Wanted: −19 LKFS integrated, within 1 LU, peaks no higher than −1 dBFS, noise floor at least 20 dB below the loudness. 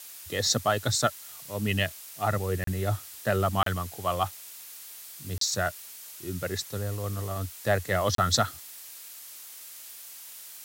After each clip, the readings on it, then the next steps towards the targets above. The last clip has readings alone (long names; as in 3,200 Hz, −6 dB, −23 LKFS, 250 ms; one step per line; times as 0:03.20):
number of dropouts 4; longest dropout 33 ms; background noise floor −45 dBFS; target noise floor −49 dBFS; integrated loudness −28.5 LKFS; sample peak −9.5 dBFS; target loudness −19.0 LKFS
→ repair the gap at 0:02.64/0:03.63/0:05.38/0:08.15, 33 ms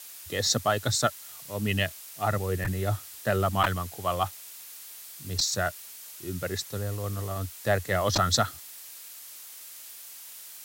number of dropouts 0; background noise floor −45 dBFS; target noise floor −49 dBFS
→ broadband denoise 6 dB, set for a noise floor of −45 dBFS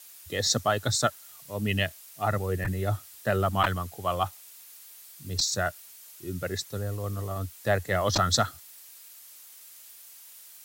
background noise floor −50 dBFS; integrated loudness −28.5 LKFS; sample peak −9.5 dBFS; target loudness −19.0 LKFS
→ level +9.5 dB
brickwall limiter −1 dBFS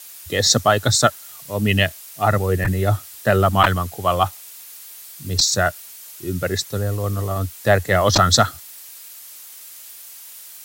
integrated loudness −19.0 LKFS; sample peak −1.0 dBFS; background noise floor −40 dBFS